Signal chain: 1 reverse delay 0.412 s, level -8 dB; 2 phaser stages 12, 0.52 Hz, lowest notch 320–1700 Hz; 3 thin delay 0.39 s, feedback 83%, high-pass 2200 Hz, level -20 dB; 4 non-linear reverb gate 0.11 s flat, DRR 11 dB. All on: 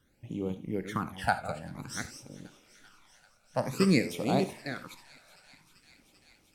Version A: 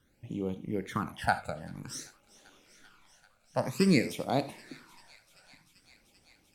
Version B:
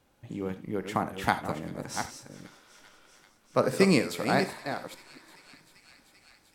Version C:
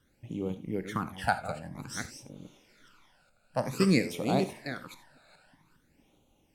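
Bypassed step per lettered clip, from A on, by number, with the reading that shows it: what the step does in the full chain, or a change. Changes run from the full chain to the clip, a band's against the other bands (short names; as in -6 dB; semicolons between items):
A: 1, momentary loudness spread change -1 LU; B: 2, 125 Hz band -3.0 dB; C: 3, momentary loudness spread change -4 LU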